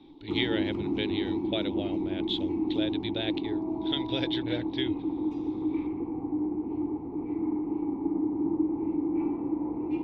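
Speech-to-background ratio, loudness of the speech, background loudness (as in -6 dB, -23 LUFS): -3.5 dB, -34.5 LUFS, -31.0 LUFS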